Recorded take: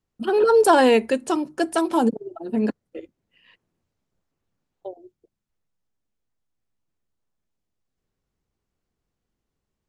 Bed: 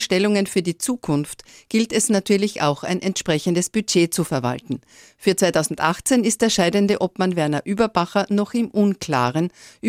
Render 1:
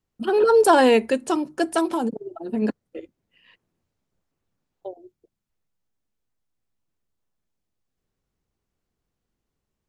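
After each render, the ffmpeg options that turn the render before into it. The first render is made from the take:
-filter_complex "[0:a]asettb=1/sr,asplit=3[s0][s1][s2];[s0]atrim=end=1.914[s3];[s1]atrim=start=1.91:end=2.62,asetpts=PTS-STARTPTS,afade=t=in:d=0.004:c=qsin,afade=t=out:st=0.706:d=0.004:c=qsin,acompressor=threshold=0.1:ratio=6:attack=3.2:release=140:knee=1:detection=peak[s4];[s2]atrim=start=2.616[s5];[s3][s4]acrossfade=d=0.004:c1=hsin:c2=qsin[s6];[s6][s5]acrossfade=d=0.004:c1=qsin:c2=hsin"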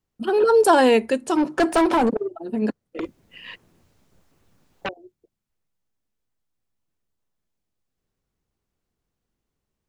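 -filter_complex "[0:a]asplit=3[s0][s1][s2];[s0]afade=t=out:st=1.36:d=0.02[s3];[s1]asplit=2[s4][s5];[s5]highpass=f=720:p=1,volume=15.8,asoftclip=type=tanh:threshold=0.316[s6];[s4][s6]amix=inputs=2:normalize=0,lowpass=f=1900:p=1,volume=0.501,afade=t=in:st=1.36:d=0.02,afade=t=out:st=2.26:d=0.02[s7];[s2]afade=t=in:st=2.26:d=0.02[s8];[s3][s7][s8]amix=inputs=3:normalize=0,asettb=1/sr,asplit=3[s9][s10][s11];[s9]atrim=end=2.994[s12];[s10]atrim=start=2.99:end=4.89,asetpts=PTS-STARTPTS,afade=t=in:d=0.004:c=qsin,afade=t=out:st=1.896:d=0.004:c=qsin,aeval=exprs='0.075*sin(PI/2*4.47*val(0)/0.075)':c=same[s13];[s11]atrim=start=4.886[s14];[s12][s13]acrossfade=d=0.004:c1=hsin:c2=qsin[s15];[s15][s14]acrossfade=d=0.004:c1=qsin:c2=hsin"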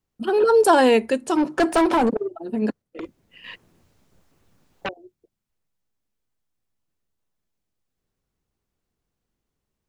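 -filter_complex "[0:a]asplit=3[s0][s1][s2];[s0]atrim=end=2.822[s3];[s1]atrim=start=2.818:end=3.442,asetpts=PTS-STARTPTS,volume=0.596[s4];[s2]atrim=start=3.438[s5];[s3][s4]acrossfade=d=0.004:c1=hsin:c2=hsin[s6];[s6][s5]acrossfade=d=0.004:c1=hsin:c2=hsin"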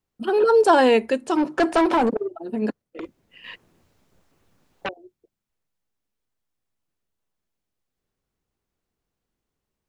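-filter_complex "[0:a]acrossover=split=8300[s0][s1];[s1]acompressor=threshold=0.002:ratio=4:attack=1:release=60[s2];[s0][s2]amix=inputs=2:normalize=0,bass=f=250:g=-3,treble=f=4000:g=-2"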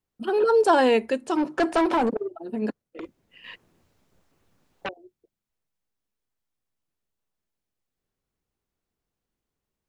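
-af "volume=0.708"

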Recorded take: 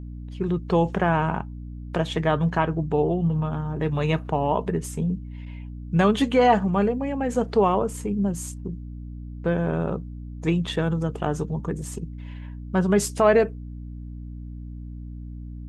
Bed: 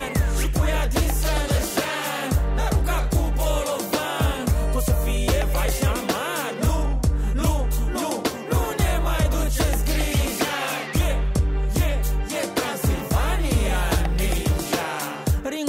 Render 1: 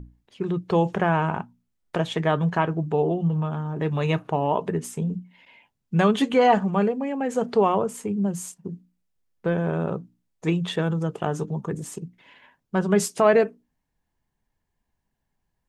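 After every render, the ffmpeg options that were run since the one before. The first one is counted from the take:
-af "bandreject=f=60:t=h:w=6,bandreject=f=120:t=h:w=6,bandreject=f=180:t=h:w=6,bandreject=f=240:t=h:w=6,bandreject=f=300:t=h:w=6"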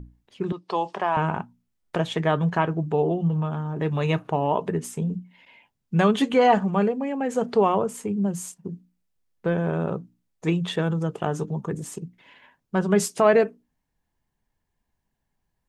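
-filter_complex "[0:a]asettb=1/sr,asplit=3[s0][s1][s2];[s0]atrim=end=0.524[s3];[s1]atrim=start=0.52:end=1.17,asetpts=PTS-STARTPTS,afade=t=in:d=0.004:c=qsin,afade=t=out:st=0.646:d=0.004:c=qsin,highpass=480,equalizer=f=480:t=q:w=4:g=-6,equalizer=f=1000:t=q:w=4:g=5,equalizer=f=1500:t=q:w=4:g=-7,equalizer=f=2200:t=q:w=4:g=-4,equalizer=f=4800:t=q:w=4:g=7,equalizer=f=6800:t=q:w=4:g=-6,lowpass=f=9000:w=0.5412,lowpass=f=9000:w=1.3066[s4];[s2]atrim=start=1.166[s5];[s3][s4]acrossfade=d=0.004:c1=hsin:c2=qsin[s6];[s6][s5]acrossfade=d=0.004:c1=qsin:c2=hsin"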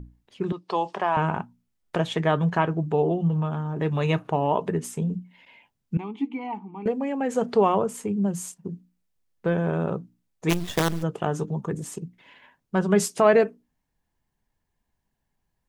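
-filter_complex "[0:a]asettb=1/sr,asplit=3[s0][s1][s2];[s0]atrim=end=5.974[s3];[s1]atrim=start=5.97:end=6.86,asetpts=PTS-STARTPTS,afade=t=in:d=0.004:c=qsin,afade=t=out:st=0.886:d=0.004:c=qsin,asplit=3[s4][s5][s6];[s4]bandpass=f=300:t=q:w=8,volume=1[s7];[s5]bandpass=f=870:t=q:w=8,volume=0.501[s8];[s6]bandpass=f=2240:t=q:w=8,volume=0.355[s9];[s7][s8][s9]amix=inputs=3:normalize=0[s10];[s2]atrim=start=6.856[s11];[s3][s10]acrossfade=d=0.004:c1=hsin:c2=qsin[s12];[s12][s11]acrossfade=d=0.004:c1=qsin:c2=hsin,asplit=3[s13][s14][s15];[s13]afade=t=out:st=10.49:d=0.02[s16];[s14]acrusher=bits=4:dc=4:mix=0:aa=0.000001,afade=t=in:st=10.49:d=0.02,afade=t=out:st=11.02:d=0.02[s17];[s15]afade=t=in:st=11.02:d=0.02[s18];[s16][s17][s18]amix=inputs=3:normalize=0"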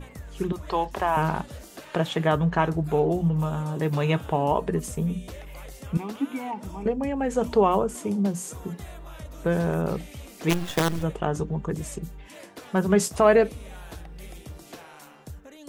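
-filter_complex "[1:a]volume=0.106[s0];[0:a][s0]amix=inputs=2:normalize=0"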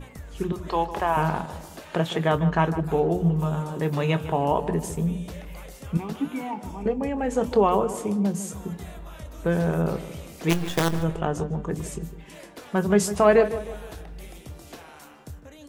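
-filter_complex "[0:a]asplit=2[s0][s1];[s1]adelay=24,volume=0.2[s2];[s0][s2]amix=inputs=2:normalize=0,asplit=2[s3][s4];[s4]adelay=154,lowpass=f=2100:p=1,volume=0.251,asplit=2[s5][s6];[s6]adelay=154,lowpass=f=2100:p=1,volume=0.46,asplit=2[s7][s8];[s8]adelay=154,lowpass=f=2100:p=1,volume=0.46,asplit=2[s9][s10];[s10]adelay=154,lowpass=f=2100:p=1,volume=0.46,asplit=2[s11][s12];[s12]adelay=154,lowpass=f=2100:p=1,volume=0.46[s13];[s3][s5][s7][s9][s11][s13]amix=inputs=6:normalize=0"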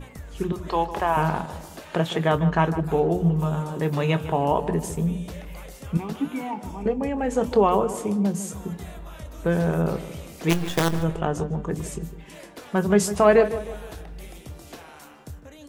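-af "volume=1.12"

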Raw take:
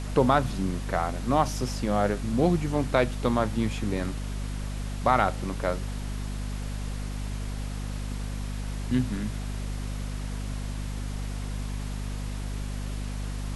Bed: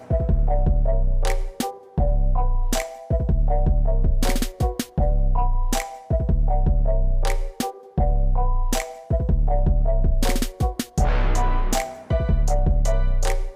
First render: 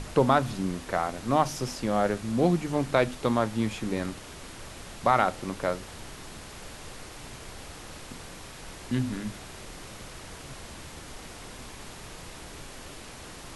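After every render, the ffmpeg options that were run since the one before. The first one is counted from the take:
-af "bandreject=f=50:t=h:w=6,bandreject=f=100:t=h:w=6,bandreject=f=150:t=h:w=6,bandreject=f=200:t=h:w=6,bandreject=f=250:t=h:w=6"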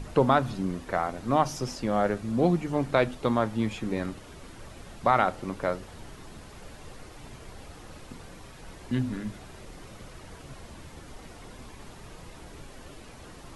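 -af "afftdn=nr=8:nf=-44"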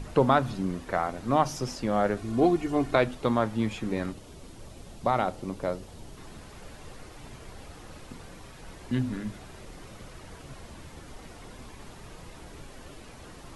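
-filter_complex "[0:a]asettb=1/sr,asplit=3[s0][s1][s2];[s0]atrim=end=2.174[s3];[s1]atrim=start=2.17:end=2.96,asetpts=PTS-STARTPTS,afade=t=in:d=0.004:c=qsin,afade=t=out:st=0.786:d=0.004:c=qsin,aecho=1:1:2.8:0.65,atrim=end_sample=34839[s4];[s2]atrim=start=2.956[s5];[s3][s4]acrossfade=d=0.004:c1=hsin:c2=qsin[s6];[s6][s5]acrossfade=d=0.004:c1=qsin:c2=hsin,asettb=1/sr,asplit=3[s7][s8][s9];[s7]atrim=end=4.124[s10];[s8]atrim=start=4.12:end=6.17,asetpts=PTS-STARTPTS,afade=t=in:d=0.004:c=qsin,afade=t=out:st=2.046:d=0.004:c=qsin,equalizer=f=1600:w=0.91:g=-8[s11];[s9]atrim=start=6.166[s12];[s10][s11]acrossfade=d=0.004:c1=hsin:c2=qsin[s13];[s13][s12]acrossfade=d=0.004:c1=qsin:c2=hsin"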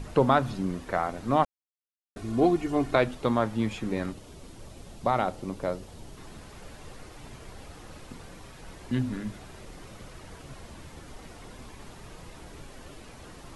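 -filter_complex "[0:a]asplit=3[s0][s1][s2];[s0]atrim=end=1.45,asetpts=PTS-STARTPTS,afade=t=out:st=1.446:d=0.004:c=hsin[s3];[s1]atrim=start=1.45:end=2.16,asetpts=PTS-STARTPTS,volume=0[s4];[s2]atrim=start=2.16,asetpts=PTS-STARTPTS,afade=t=in:d=0.004:c=hsin[s5];[s3][s4][s5]concat=n=3:v=0:a=1"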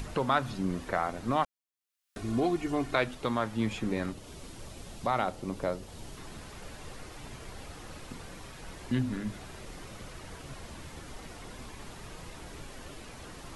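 -filter_complex "[0:a]acrossover=split=1100[s0][s1];[s0]alimiter=limit=0.1:level=0:latency=1:release=383[s2];[s1]acompressor=mode=upward:threshold=0.00501:ratio=2.5[s3];[s2][s3]amix=inputs=2:normalize=0"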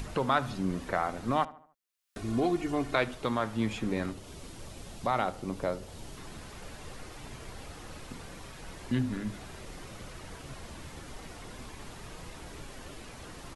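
-filter_complex "[0:a]asplit=2[s0][s1];[s1]adelay=74,lowpass=f=2300:p=1,volume=0.126,asplit=2[s2][s3];[s3]adelay=74,lowpass=f=2300:p=1,volume=0.46,asplit=2[s4][s5];[s5]adelay=74,lowpass=f=2300:p=1,volume=0.46,asplit=2[s6][s7];[s7]adelay=74,lowpass=f=2300:p=1,volume=0.46[s8];[s0][s2][s4][s6][s8]amix=inputs=5:normalize=0"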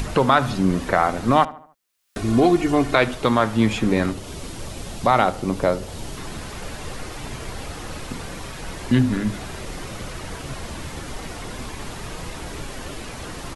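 -af "volume=3.98,alimiter=limit=0.708:level=0:latency=1"

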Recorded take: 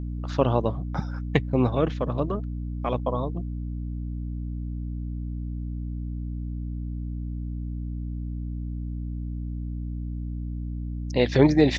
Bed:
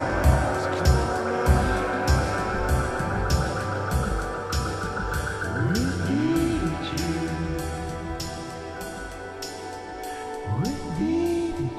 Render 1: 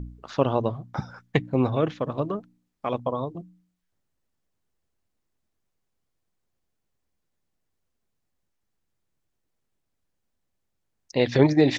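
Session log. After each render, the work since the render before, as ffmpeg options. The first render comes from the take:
-af "bandreject=f=60:t=h:w=4,bandreject=f=120:t=h:w=4,bandreject=f=180:t=h:w=4,bandreject=f=240:t=h:w=4,bandreject=f=300:t=h:w=4"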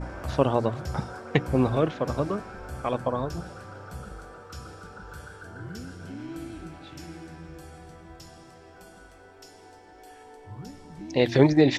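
-filter_complex "[1:a]volume=0.178[s0];[0:a][s0]amix=inputs=2:normalize=0"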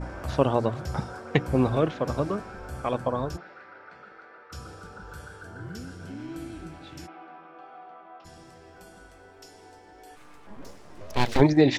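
-filter_complex "[0:a]asplit=3[s0][s1][s2];[s0]afade=t=out:st=3.36:d=0.02[s3];[s1]highpass=470,equalizer=f=510:t=q:w=4:g=-6,equalizer=f=750:t=q:w=4:g=-5,equalizer=f=1100:t=q:w=4:g=-5,equalizer=f=2000:t=q:w=4:g=8,equalizer=f=3200:t=q:w=4:g=-7,lowpass=f=3700:w=0.5412,lowpass=f=3700:w=1.3066,afade=t=in:st=3.36:d=0.02,afade=t=out:st=4.51:d=0.02[s4];[s2]afade=t=in:st=4.51:d=0.02[s5];[s3][s4][s5]amix=inputs=3:normalize=0,asplit=3[s6][s7][s8];[s6]afade=t=out:st=7.06:d=0.02[s9];[s7]highpass=f=290:w=0.5412,highpass=f=290:w=1.3066,equalizer=f=340:t=q:w=4:g=-7,equalizer=f=490:t=q:w=4:g=-5,equalizer=f=720:t=q:w=4:g=8,equalizer=f=1200:t=q:w=4:g=10,equalizer=f=1800:t=q:w=4:g=-7,lowpass=f=2900:w=0.5412,lowpass=f=2900:w=1.3066,afade=t=in:st=7.06:d=0.02,afade=t=out:st=8.24:d=0.02[s10];[s8]afade=t=in:st=8.24:d=0.02[s11];[s9][s10][s11]amix=inputs=3:normalize=0,asplit=3[s12][s13][s14];[s12]afade=t=out:st=10.15:d=0.02[s15];[s13]aeval=exprs='abs(val(0))':c=same,afade=t=in:st=10.15:d=0.02,afade=t=out:st=11.4:d=0.02[s16];[s14]afade=t=in:st=11.4:d=0.02[s17];[s15][s16][s17]amix=inputs=3:normalize=0"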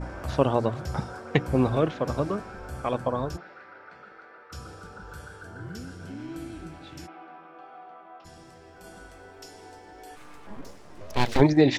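-filter_complex "[0:a]asplit=3[s0][s1][s2];[s0]atrim=end=8.842[s3];[s1]atrim=start=8.838:end=10.612,asetpts=PTS-STARTPTS,volume=1.5[s4];[s2]atrim=start=10.608[s5];[s3][s4]acrossfade=d=0.004:c1=hsin:c2=hsin[s6];[s6][s5]acrossfade=d=0.004:c1=hsin:c2=hsin"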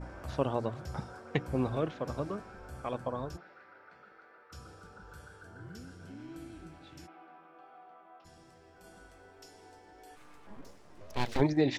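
-af "volume=0.376"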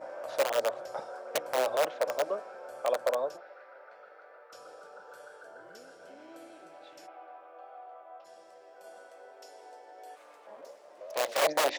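-af "aeval=exprs='(mod(15.8*val(0)+1,2)-1)/15.8':c=same,highpass=f=570:t=q:w=4.9"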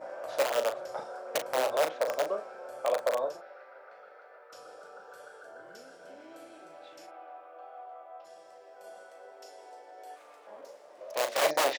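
-filter_complex "[0:a]asplit=2[s0][s1];[s1]adelay=38,volume=0.398[s2];[s0][s2]amix=inputs=2:normalize=0"

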